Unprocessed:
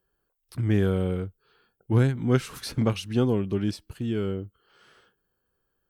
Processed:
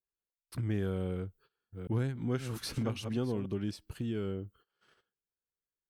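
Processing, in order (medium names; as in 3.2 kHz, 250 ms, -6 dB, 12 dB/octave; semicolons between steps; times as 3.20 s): 1.14–3.46 s: chunks repeated in reverse 367 ms, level -11 dB; gate -55 dBFS, range -25 dB; compression 2:1, threshold -38 dBFS, peak gain reduction 12 dB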